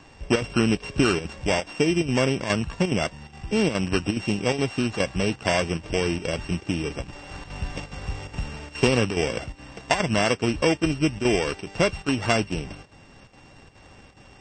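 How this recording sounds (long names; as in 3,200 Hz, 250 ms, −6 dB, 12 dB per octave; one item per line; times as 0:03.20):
a buzz of ramps at a fixed pitch in blocks of 16 samples
chopped level 2.4 Hz, depth 60%, duty 85%
MP3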